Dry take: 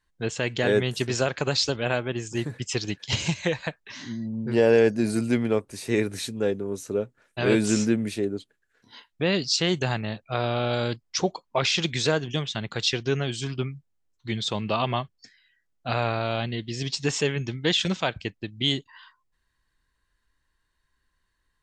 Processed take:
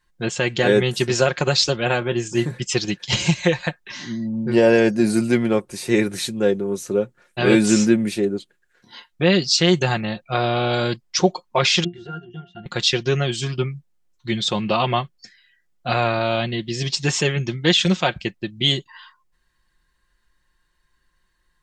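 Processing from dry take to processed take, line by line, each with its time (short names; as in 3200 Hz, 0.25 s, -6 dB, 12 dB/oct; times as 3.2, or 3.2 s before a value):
1.99–2.6 doubler 25 ms -12 dB
11.84–12.66 octave resonator F, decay 0.17 s
whole clip: comb 5.6 ms, depth 53%; gain +5 dB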